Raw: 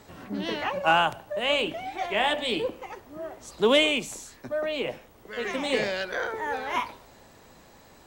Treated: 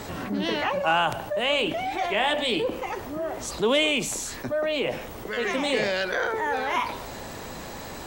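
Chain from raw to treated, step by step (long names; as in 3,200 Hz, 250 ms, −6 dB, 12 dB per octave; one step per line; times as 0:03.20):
envelope flattener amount 50%
level −2.5 dB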